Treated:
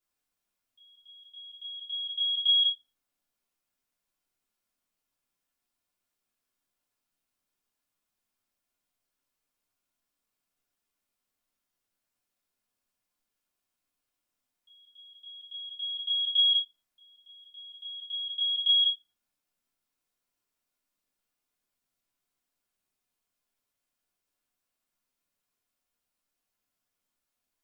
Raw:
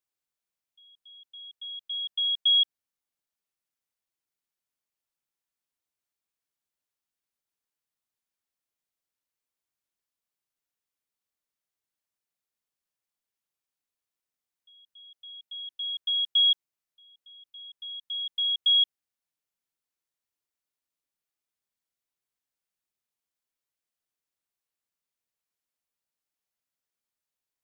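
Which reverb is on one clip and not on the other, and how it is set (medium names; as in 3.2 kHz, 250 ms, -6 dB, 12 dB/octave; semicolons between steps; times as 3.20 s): simulated room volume 150 m³, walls furnished, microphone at 3.2 m; trim -1.5 dB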